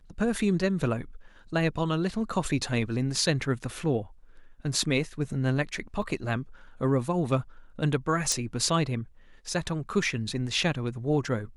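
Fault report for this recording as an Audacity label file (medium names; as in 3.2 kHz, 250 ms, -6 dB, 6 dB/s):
6.020000	6.020000	dropout 3.1 ms
8.320000	8.320000	pop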